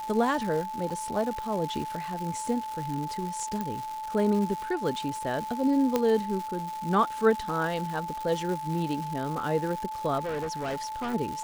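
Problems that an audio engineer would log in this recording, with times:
crackle 360 per s -33 dBFS
whine 870 Hz -33 dBFS
0.90–0.91 s: dropout 5.1 ms
3.61 s: pop
5.96 s: pop -11 dBFS
10.18–11.15 s: clipped -28.5 dBFS

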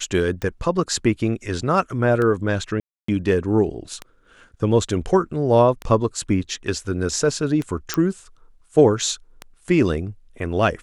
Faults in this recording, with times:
tick 33 1/3 rpm -14 dBFS
2.80–3.08 s: dropout 284 ms
7.94 s: pop -5 dBFS

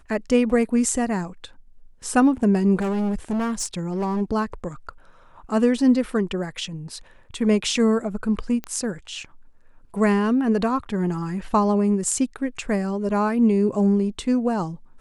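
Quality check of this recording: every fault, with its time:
2.79–4.22 s: clipped -21 dBFS
8.64 s: pop -17 dBFS

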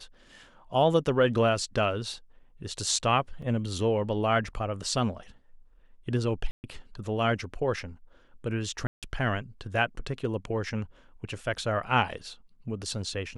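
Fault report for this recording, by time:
3.42 s: dropout 3.8 ms
6.51–6.64 s: dropout 129 ms
8.87–9.03 s: dropout 157 ms

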